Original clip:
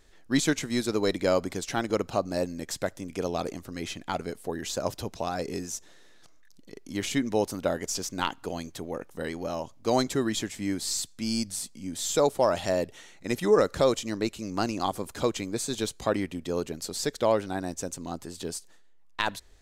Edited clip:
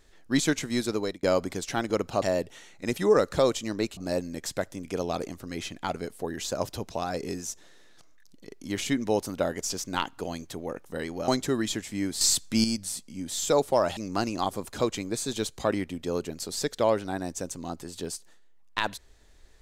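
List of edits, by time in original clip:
0.79–1.23 s: fade out equal-power
9.53–9.95 s: delete
10.88–11.31 s: gain +7.5 dB
12.64–14.39 s: move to 2.22 s

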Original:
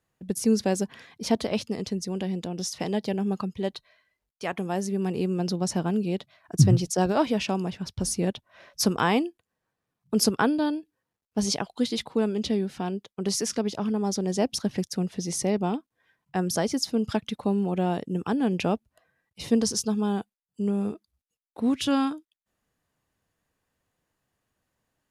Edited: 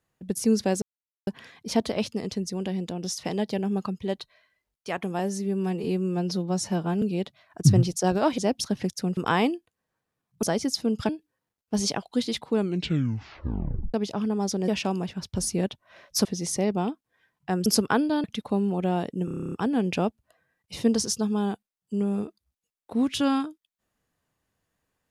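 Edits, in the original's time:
0.82 s: insert silence 0.45 s
4.74–5.96 s: stretch 1.5×
7.32–8.89 s: swap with 14.32–15.11 s
10.15–10.73 s: swap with 16.52–17.18 s
12.19 s: tape stop 1.39 s
18.19 s: stutter 0.03 s, 10 plays

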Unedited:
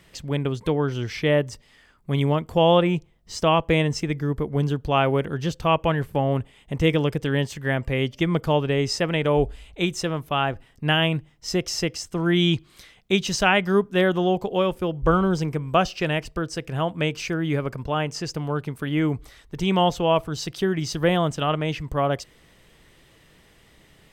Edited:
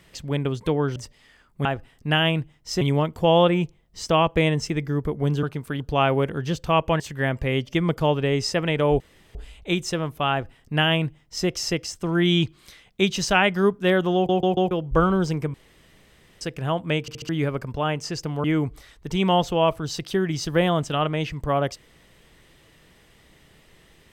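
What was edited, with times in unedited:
0.96–1.45 s: delete
5.96–7.46 s: delete
9.46 s: insert room tone 0.35 s
10.42–11.58 s: copy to 2.14 s
14.26 s: stutter in place 0.14 s, 4 plays
15.65–16.52 s: room tone
17.12 s: stutter in place 0.07 s, 4 plays
18.55–18.92 s: move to 4.76 s

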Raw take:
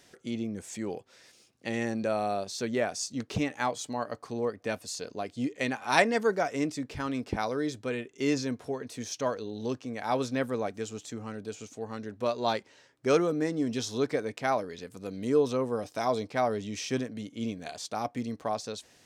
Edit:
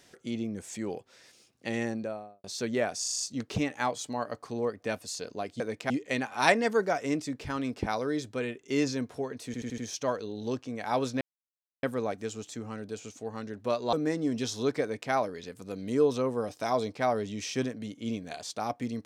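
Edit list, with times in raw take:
1.75–2.44 s: studio fade out
3.00 s: stutter 0.04 s, 6 plays
8.96 s: stutter 0.08 s, 5 plays
10.39 s: insert silence 0.62 s
12.49–13.28 s: delete
14.17–14.47 s: copy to 5.40 s

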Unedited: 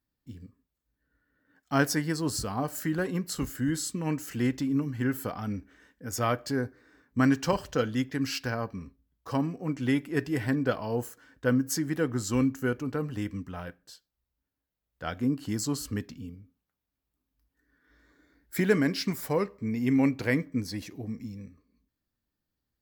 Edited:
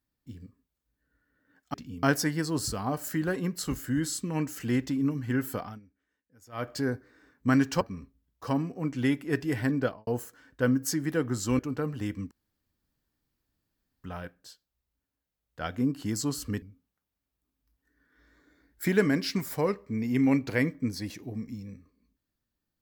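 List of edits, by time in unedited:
5.32–6.42 s: dip -22.5 dB, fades 0.19 s
7.52–8.65 s: delete
10.64–10.91 s: studio fade out
12.43–12.75 s: delete
13.47 s: insert room tone 1.73 s
16.05–16.34 s: move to 1.74 s

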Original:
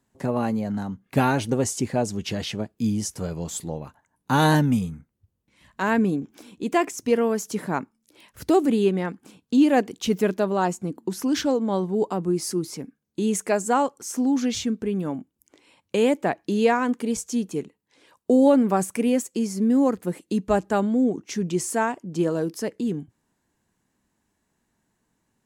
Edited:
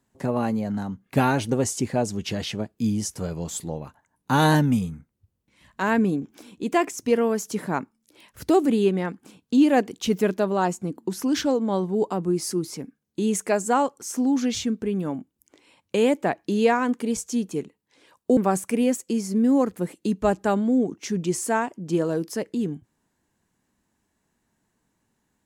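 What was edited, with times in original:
18.37–18.63 s: delete

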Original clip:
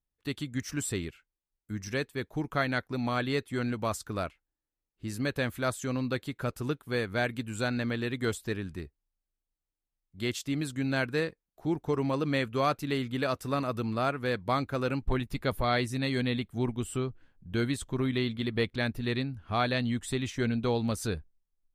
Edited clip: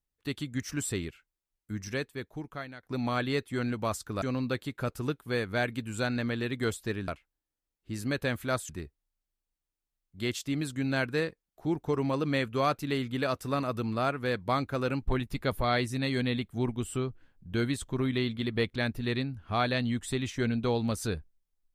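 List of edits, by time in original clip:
1.80–2.83 s: fade out, to -21 dB
4.22–5.83 s: move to 8.69 s

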